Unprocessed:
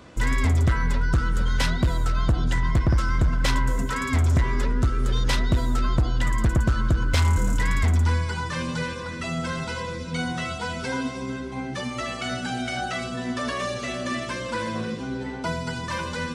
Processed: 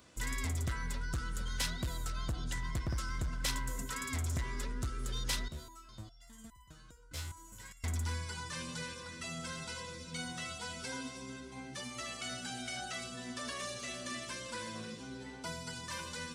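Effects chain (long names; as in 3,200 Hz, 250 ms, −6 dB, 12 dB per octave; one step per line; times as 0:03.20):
first-order pre-emphasis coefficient 0.8
0:05.48–0:07.84: step-sequenced resonator 4.9 Hz 74–1,000 Hz
level −2 dB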